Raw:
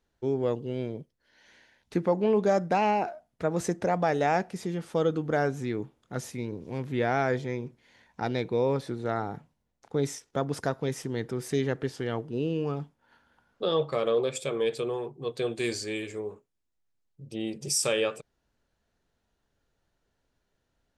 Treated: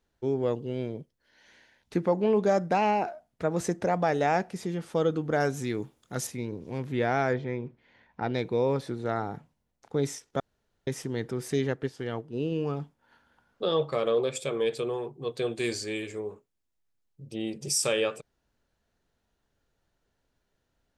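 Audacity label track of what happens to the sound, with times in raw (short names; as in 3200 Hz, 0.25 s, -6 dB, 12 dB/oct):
5.400000	6.270000	high shelf 4300 Hz +11.5 dB
7.330000	8.340000	LPF 2900 Hz
10.400000	10.870000	room tone
11.670000	12.520000	upward expander, over -40 dBFS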